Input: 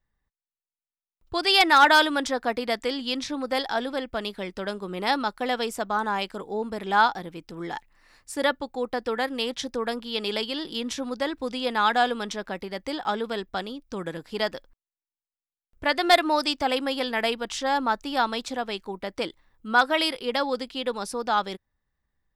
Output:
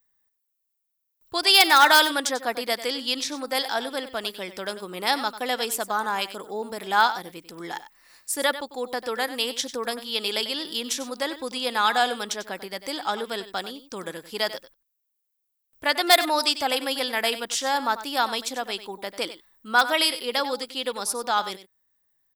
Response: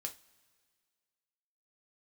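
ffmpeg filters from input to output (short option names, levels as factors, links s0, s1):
-af "aemphasis=mode=production:type=bsi,aecho=1:1:95:0.211"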